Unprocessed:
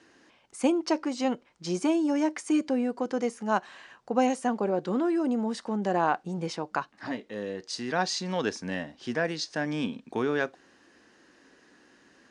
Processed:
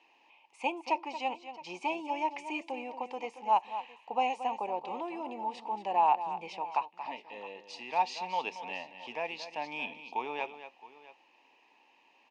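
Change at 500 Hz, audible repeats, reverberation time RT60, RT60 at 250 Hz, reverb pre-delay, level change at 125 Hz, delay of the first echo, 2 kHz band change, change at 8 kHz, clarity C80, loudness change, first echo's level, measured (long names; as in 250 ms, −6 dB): −9.5 dB, 2, no reverb audible, no reverb audible, no reverb audible, below −20 dB, 229 ms, −5.0 dB, below −15 dB, no reverb audible, −5.5 dB, −11.5 dB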